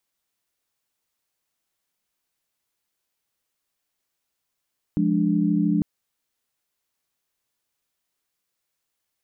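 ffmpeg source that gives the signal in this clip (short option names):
-f lavfi -i "aevalsrc='0.075*(sin(2*PI*174.61*t)+sin(2*PI*207.65*t)+sin(2*PI*293.66*t))':d=0.85:s=44100"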